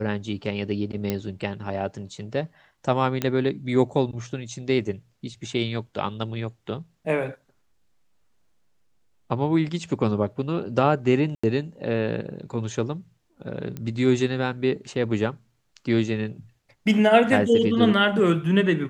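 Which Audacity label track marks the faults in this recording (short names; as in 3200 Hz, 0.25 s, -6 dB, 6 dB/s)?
1.100000	1.100000	pop -11 dBFS
3.220000	3.220000	pop -10 dBFS
11.350000	11.440000	gap 85 ms
13.770000	13.770000	pop -20 dBFS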